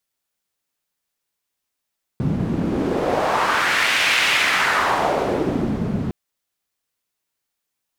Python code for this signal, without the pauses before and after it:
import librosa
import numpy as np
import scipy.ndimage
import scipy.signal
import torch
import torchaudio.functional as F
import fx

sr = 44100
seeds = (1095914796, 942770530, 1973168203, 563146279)

y = fx.wind(sr, seeds[0], length_s=3.91, low_hz=170.0, high_hz=2400.0, q=1.8, gusts=1, swing_db=5.0)